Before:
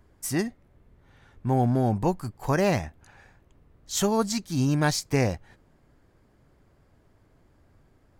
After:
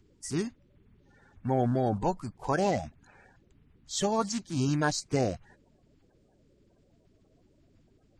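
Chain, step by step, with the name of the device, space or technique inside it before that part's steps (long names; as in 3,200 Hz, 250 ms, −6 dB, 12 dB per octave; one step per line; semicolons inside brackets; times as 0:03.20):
clip after many re-uploads (low-pass filter 8,600 Hz 24 dB per octave; spectral magnitudes quantised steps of 30 dB)
level −3.5 dB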